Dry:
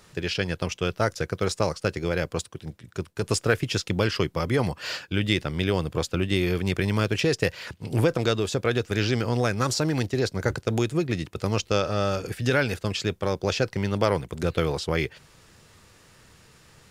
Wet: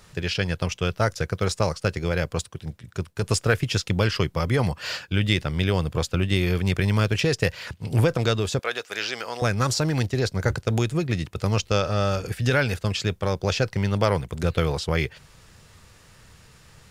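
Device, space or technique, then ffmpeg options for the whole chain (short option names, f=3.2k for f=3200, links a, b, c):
low shelf boost with a cut just above: -filter_complex "[0:a]lowshelf=f=110:g=6.5,equalizer=f=320:t=o:w=0.93:g=-4.5,asettb=1/sr,asplit=3[a][b][c];[a]atrim=end=8.594[d];[b]atrim=start=8.59:end=9.42,asetpts=PTS-STARTPTS,afade=t=in:d=0.004:c=qsin,afade=t=out:st=0.826:d=0.004:c=qsin,highpass=620[e];[c]atrim=start=9.416[f];[d][e]acrossfade=d=0.004:c1=hsin:c2=qsin[g];[g][f]acrossfade=d=0.004:c1=qsin:c2=hsin,volume=1.5dB"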